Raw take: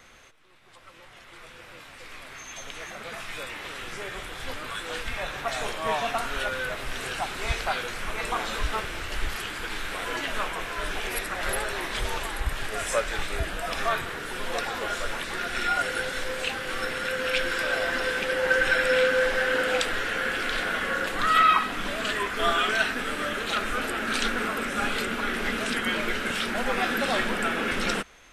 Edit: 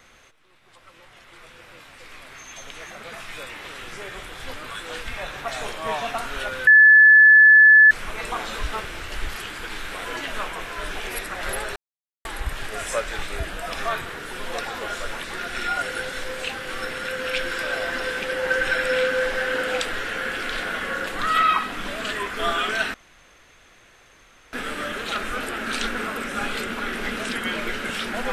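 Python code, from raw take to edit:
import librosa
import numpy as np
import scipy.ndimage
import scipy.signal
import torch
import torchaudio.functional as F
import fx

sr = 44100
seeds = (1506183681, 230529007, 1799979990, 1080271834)

y = fx.edit(x, sr, fx.bleep(start_s=6.67, length_s=1.24, hz=1730.0, db=-7.5),
    fx.silence(start_s=11.76, length_s=0.49),
    fx.insert_room_tone(at_s=22.94, length_s=1.59), tone=tone)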